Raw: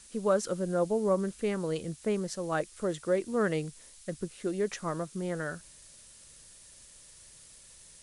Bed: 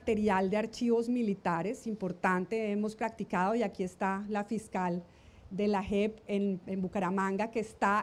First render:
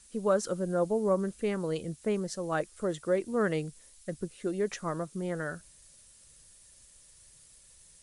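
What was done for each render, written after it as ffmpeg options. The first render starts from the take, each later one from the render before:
-af "afftdn=nr=6:nf=-54"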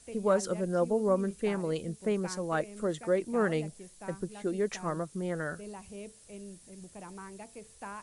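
-filter_complex "[1:a]volume=0.188[s0];[0:a][s0]amix=inputs=2:normalize=0"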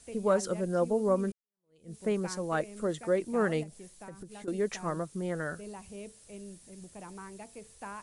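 -filter_complex "[0:a]asettb=1/sr,asplit=3[s0][s1][s2];[s0]atrim=end=3.634[s3];[s1]atrim=start=3.63:end=4.48,asetpts=PTS-STARTPTS,afade=t=in:d=0.004:c=qsin,afade=t=out:st=0.846:d=0.004:c=qsin,acompressor=threshold=0.00891:ratio=6:attack=3.2:release=140:knee=1:detection=peak[s4];[s2]atrim=start=4.476[s5];[s3][s4]acrossfade=d=0.004:c1=hsin:c2=qsin[s6];[s6][s5]acrossfade=d=0.004:c1=qsin:c2=hsin,asplit=2[s7][s8];[s7]atrim=end=1.32,asetpts=PTS-STARTPTS,afade=t=out:st=1.316:d=0.004:c=hsin[s9];[s8]atrim=start=1.32,asetpts=PTS-STARTPTS,afade=t=in:d=0.63:c=exp[s10];[s9][s10]concat=n=2:v=0:a=1"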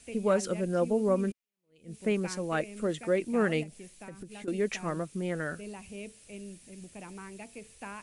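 -af "equalizer=f=250:t=o:w=0.67:g=4,equalizer=f=1000:t=o:w=0.67:g=-3,equalizer=f=2500:t=o:w=0.67:g=9"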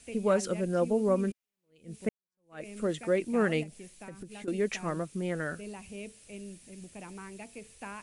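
-filter_complex "[0:a]asplit=2[s0][s1];[s0]atrim=end=2.09,asetpts=PTS-STARTPTS,afade=t=out:st=2.086:d=0.004:c=hsin[s2];[s1]atrim=start=2.09,asetpts=PTS-STARTPTS,afade=t=in:d=0.57:c=exp[s3];[s2][s3]concat=n=2:v=0:a=1"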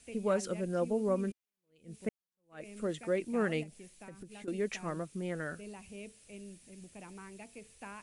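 -af "volume=0.596"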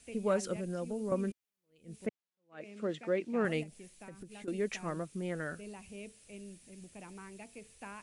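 -filter_complex "[0:a]asettb=1/sr,asplit=3[s0][s1][s2];[s0]atrim=end=0.564[s3];[s1]atrim=start=0.56:end=1.12,asetpts=PTS-STARTPTS,afade=t=in:d=0.004:c=qsin,afade=t=out:st=0.556:d=0.004:c=qsin,acrossover=split=170|3000[s4][s5][s6];[s5]acompressor=threshold=0.0141:ratio=3:attack=3.2:release=140:knee=2.83:detection=peak[s7];[s4][s7][s6]amix=inputs=3:normalize=0[s8];[s2]atrim=start=1.116[s9];[s3][s8]acrossfade=d=0.004:c1=hsin:c2=qsin[s10];[s10][s9]acrossfade=d=0.004:c1=qsin:c2=hsin,asettb=1/sr,asplit=3[s11][s12][s13];[s11]atrim=end=2.064[s14];[s12]atrim=start=2.06:end=3.45,asetpts=PTS-STARTPTS,afade=t=in:d=0.004:c=qsin,afade=t=out:st=1.386:d=0.004:c=qsin,highpass=150,lowpass=4900[s15];[s13]atrim=start=3.446[s16];[s14][s15]acrossfade=d=0.004:c1=hsin:c2=qsin[s17];[s17][s16]acrossfade=d=0.004:c1=qsin:c2=hsin"

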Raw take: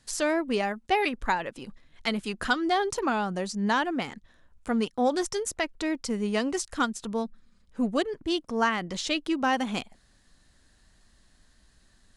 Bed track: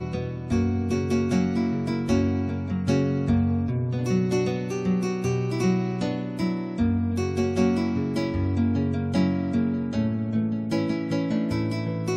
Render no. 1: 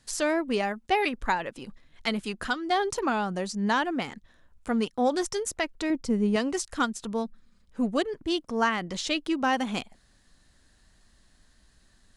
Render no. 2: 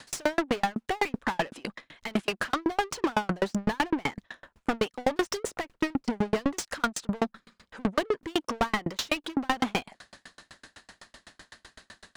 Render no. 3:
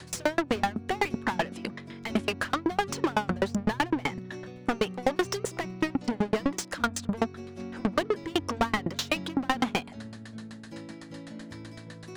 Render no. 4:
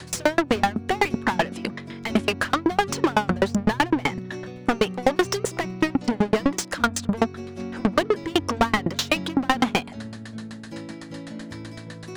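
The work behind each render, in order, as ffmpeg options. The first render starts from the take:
-filter_complex "[0:a]asettb=1/sr,asplit=3[s0][s1][s2];[s0]atrim=end=5.904[s3];[s1]atrim=start=5.9:end=6.36,asetpts=PTS-STARTPTS,afade=t=in:d=0.004:c=qsin,afade=t=out:st=0.456:d=0.004:c=qsin,tiltshelf=f=660:g=6[s4];[s2]atrim=start=6.356[s5];[s3][s4]acrossfade=d=0.004:c1=hsin:c2=qsin[s6];[s6][s5]acrossfade=d=0.004:c1=qsin:c2=hsin,asplit=2[s7][s8];[s7]atrim=end=2.7,asetpts=PTS-STARTPTS,afade=t=out:st=2.25:d=0.45:silence=0.446684[s9];[s8]atrim=start=2.7,asetpts=PTS-STARTPTS,afade=t=in:d=0.004:c=hsin:silence=0.446684[s10];[s9][s10]concat=n=2:v=0:a=1"
-filter_complex "[0:a]asplit=2[s0][s1];[s1]highpass=f=720:p=1,volume=50.1,asoftclip=type=tanh:threshold=0.251[s2];[s0][s2]amix=inputs=2:normalize=0,lowpass=f=2500:p=1,volume=0.501,aeval=exprs='val(0)*pow(10,-39*if(lt(mod(7.9*n/s,1),2*abs(7.9)/1000),1-mod(7.9*n/s,1)/(2*abs(7.9)/1000),(mod(7.9*n/s,1)-2*abs(7.9)/1000)/(1-2*abs(7.9)/1000))/20)':c=same"
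-filter_complex "[1:a]volume=0.133[s0];[0:a][s0]amix=inputs=2:normalize=0"
-af "volume=2"

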